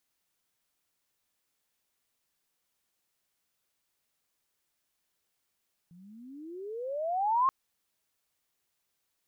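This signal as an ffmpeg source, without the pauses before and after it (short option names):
-f lavfi -i "aevalsrc='pow(10,(-21+30*(t/1.58-1))/20)*sin(2*PI*167*1.58/(32.5*log(2)/12)*(exp(32.5*log(2)/12*t/1.58)-1))':d=1.58:s=44100"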